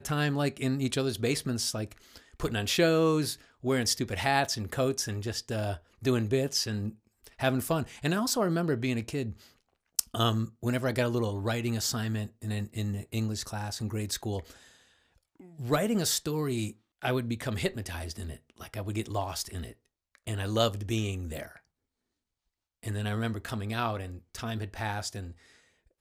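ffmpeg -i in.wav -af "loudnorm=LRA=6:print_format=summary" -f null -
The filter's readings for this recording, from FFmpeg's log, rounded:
Input Integrated:    -31.0 LUFS
Input True Peak:      -3.0 dBTP
Input LRA:             6.4 LU
Input Threshold:     -41.7 LUFS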